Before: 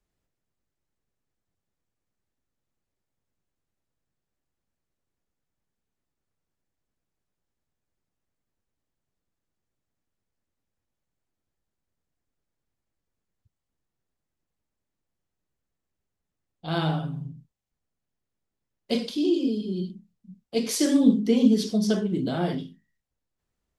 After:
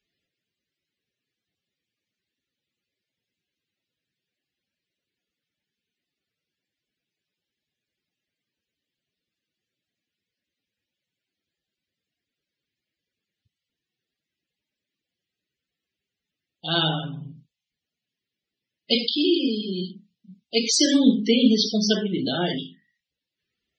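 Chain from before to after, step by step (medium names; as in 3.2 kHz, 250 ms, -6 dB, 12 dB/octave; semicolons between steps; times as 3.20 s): frequency weighting D; loudest bins only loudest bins 64; trim +2.5 dB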